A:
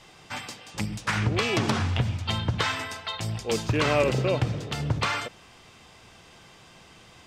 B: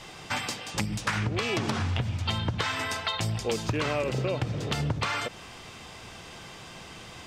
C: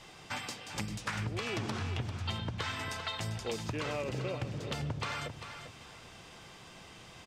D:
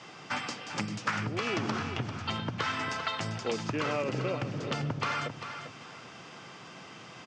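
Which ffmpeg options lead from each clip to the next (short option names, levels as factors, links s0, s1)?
-af "acompressor=threshold=0.0224:ratio=6,volume=2.24"
-af "aecho=1:1:395|790|1185:0.335|0.0871|0.0226,volume=0.398"
-af "highpass=f=120:w=0.5412,highpass=f=120:w=1.3066,equalizer=f=270:t=q:w=4:g=3,equalizer=f=1300:t=q:w=4:g=5,equalizer=f=3800:t=q:w=4:g=-5,lowpass=f=6600:w=0.5412,lowpass=f=6600:w=1.3066,volume=1.68"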